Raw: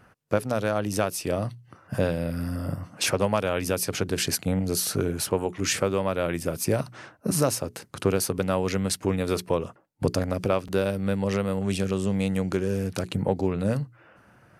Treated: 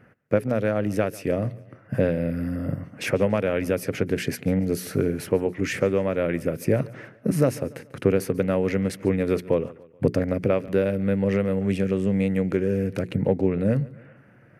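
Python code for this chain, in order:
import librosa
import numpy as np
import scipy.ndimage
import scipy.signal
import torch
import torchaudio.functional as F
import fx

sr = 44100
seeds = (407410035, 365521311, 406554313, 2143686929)

p1 = fx.graphic_eq_10(x, sr, hz=(125, 250, 500, 1000, 2000, 4000, 8000), db=(9, 8, 9, -4, 12, -5, -5))
p2 = p1 + fx.echo_feedback(p1, sr, ms=143, feedback_pct=46, wet_db=-21.0, dry=0)
y = F.gain(torch.from_numpy(p2), -6.5).numpy()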